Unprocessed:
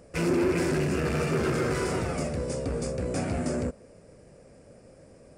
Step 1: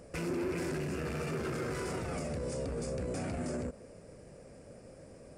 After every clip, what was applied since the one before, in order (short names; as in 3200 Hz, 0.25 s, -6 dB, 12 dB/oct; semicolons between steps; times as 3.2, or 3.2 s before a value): limiter -29 dBFS, peak gain reduction 10.5 dB; bell 12000 Hz +4.5 dB 0.28 oct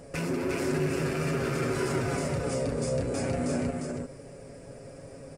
comb 7.3 ms, depth 56%; echo 0.352 s -3.5 dB; gain +4.5 dB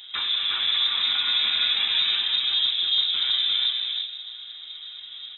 on a send at -8 dB: reverb RT60 1.5 s, pre-delay 4 ms; on the sum: inverted band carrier 3800 Hz; gain +4 dB